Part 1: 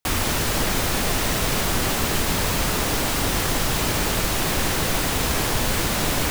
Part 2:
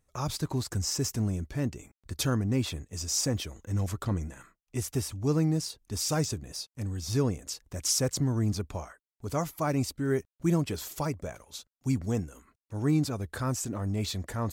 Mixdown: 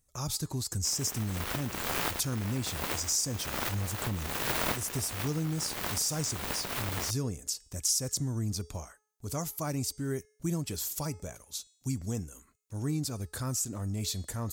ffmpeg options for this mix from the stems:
ffmpeg -i stem1.wav -i stem2.wav -filter_complex "[0:a]highpass=frequency=92:width=0.5412,highpass=frequency=92:width=1.3066,equalizer=frequency=6700:width=0.42:gain=-12,aeval=exprs='0.251*(cos(1*acos(clip(val(0)/0.251,-1,1)))-cos(1*PI/2))+0.0891*(cos(7*acos(clip(val(0)/0.251,-1,1)))-cos(7*PI/2))':channel_layout=same,adelay=800,volume=2.5dB[link_01];[1:a]bass=frequency=250:gain=4,treble=frequency=4000:gain=13,bandreject=frequency=426.2:width_type=h:width=4,bandreject=frequency=852.4:width_type=h:width=4,bandreject=frequency=1278.6:width_type=h:width=4,bandreject=frequency=1704.8:width_type=h:width=4,bandreject=frequency=2131:width_type=h:width=4,bandreject=frequency=2557.2:width_type=h:width=4,bandreject=frequency=2983.4:width_type=h:width=4,bandreject=frequency=3409.6:width_type=h:width=4,bandreject=frequency=3835.8:width_type=h:width=4,bandreject=frequency=4262:width_type=h:width=4,bandreject=frequency=4688.2:width_type=h:width=4,bandreject=frequency=5114.4:width_type=h:width=4,bandreject=frequency=5540.6:width_type=h:width=4,bandreject=frequency=5966.8:width_type=h:width=4,bandreject=frequency=6393:width_type=h:width=4,bandreject=frequency=6819.2:width_type=h:width=4,bandreject=frequency=7245.4:width_type=h:width=4,bandreject=frequency=7671.6:width_type=h:width=4,bandreject=frequency=8097.8:width_type=h:width=4,bandreject=frequency=8524:width_type=h:width=4,bandreject=frequency=8950.2:width_type=h:width=4,bandreject=frequency=9376.4:width_type=h:width=4,volume=-5.5dB,asplit=2[link_02][link_03];[link_03]apad=whole_len=313267[link_04];[link_01][link_04]sidechaincompress=threshold=-43dB:ratio=12:attack=16:release=307[link_05];[link_05][link_02]amix=inputs=2:normalize=0,acompressor=threshold=-30dB:ratio=2" out.wav

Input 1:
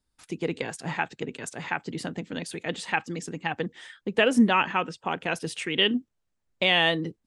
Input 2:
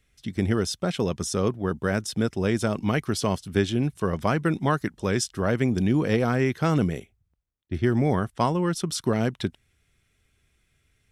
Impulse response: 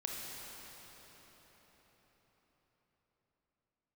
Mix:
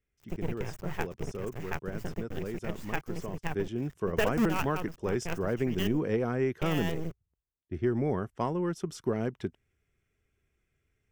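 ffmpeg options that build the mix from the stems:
-filter_complex "[0:a]acrusher=bits=4:dc=4:mix=0:aa=0.000001,lowshelf=frequency=180:width_type=q:width=1.5:gain=9,volume=-5dB[link_01];[1:a]aeval=exprs='0.398*(cos(1*acos(clip(val(0)/0.398,-1,1)))-cos(1*PI/2))+0.0126*(cos(4*acos(clip(val(0)/0.398,-1,1)))-cos(4*PI/2))':channel_layout=same,volume=-8.5dB,afade=type=in:start_time=3.48:duration=0.47:silence=0.421697,asplit=2[link_02][link_03];[link_03]apad=whole_len=320293[link_04];[link_01][link_04]sidechaincompress=threshold=-37dB:ratio=4:attack=16:release=175[link_05];[link_05][link_02]amix=inputs=2:normalize=0,equalizer=frequency=400:width_type=o:width=0.67:gain=6,equalizer=frequency=4000:width_type=o:width=0.67:gain=-11,equalizer=frequency=10000:width_type=o:width=0.67:gain=-10"

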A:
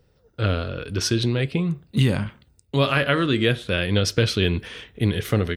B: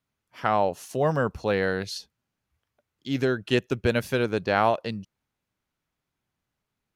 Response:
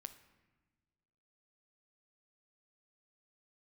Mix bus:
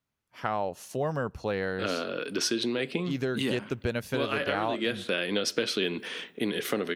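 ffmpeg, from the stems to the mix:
-filter_complex "[0:a]highpass=frequency=220:width=0.5412,highpass=frequency=220:width=1.3066,agate=range=-33dB:threshold=-49dB:ratio=3:detection=peak,adelay=1400,volume=-0.5dB,asplit=2[link_01][link_02];[link_02]volume=-10dB[link_03];[1:a]volume=-3dB,asplit=3[link_04][link_05][link_06];[link_05]volume=-19dB[link_07];[link_06]apad=whole_len=306951[link_08];[link_01][link_08]sidechaincompress=threshold=-29dB:ratio=8:attack=16:release=344[link_09];[2:a]atrim=start_sample=2205[link_10];[link_03][link_07]amix=inputs=2:normalize=0[link_11];[link_11][link_10]afir=irnorm=-1:irlink=0[link_12];[link_09][link_04][link_12]amix=inputs=3:normalize=0,acompressor=threshold=-27dB:ratio=2.5"

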